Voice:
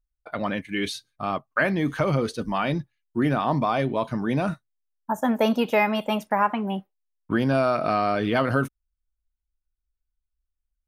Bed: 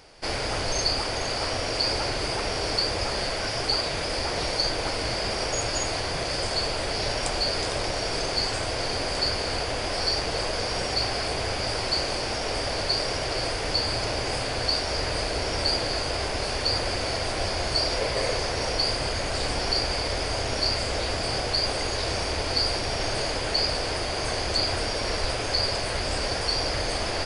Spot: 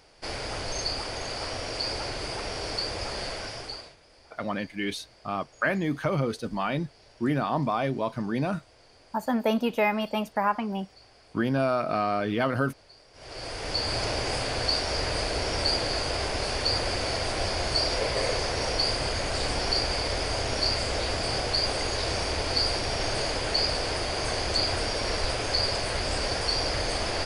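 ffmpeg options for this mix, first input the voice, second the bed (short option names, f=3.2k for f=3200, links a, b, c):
-filter_complex "[0:a]adelay=4050,volume=-3.5dB[a];[1:a]volume=22dB,afade=t=out:st=3.31:d=0.65:silence=0.0707946,afade=t=in:st=13.13:d=0.86:silence=0.0421697[b];[a][b]amix=inputs=2:normalize=0"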